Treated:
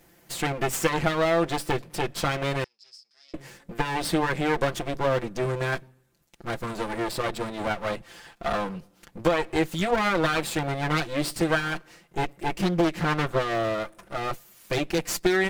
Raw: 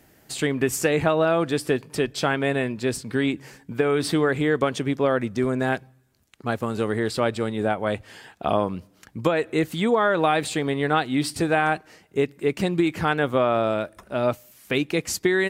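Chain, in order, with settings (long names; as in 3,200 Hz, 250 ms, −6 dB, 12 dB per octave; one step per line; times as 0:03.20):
lower of the sound and its delayed copy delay 5.8 ms
0:02.64–0:03.34: resonant band-pass 5,100 Hz, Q 15
0:12.62–0:13.55: highs frequency-modulated by the lows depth 0.78 ms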